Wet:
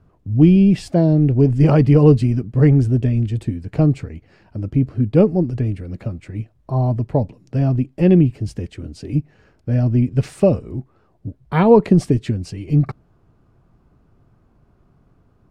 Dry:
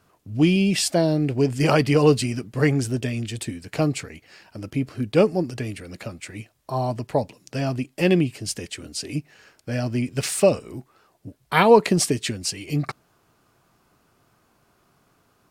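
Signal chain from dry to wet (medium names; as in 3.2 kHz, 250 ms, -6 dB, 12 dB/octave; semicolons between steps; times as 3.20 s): tilt EQ -4.5 dB/octave; trim -2.5 dB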